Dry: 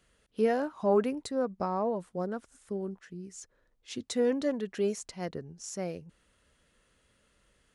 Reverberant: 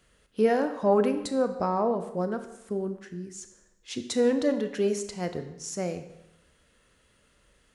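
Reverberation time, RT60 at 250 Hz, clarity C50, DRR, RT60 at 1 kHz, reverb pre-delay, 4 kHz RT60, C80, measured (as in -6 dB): 0.90 s, 0.95 s, 10.0 dB, 8.0 dB, 0.90 s, 25 ms, 0.85 s, 12.0 dB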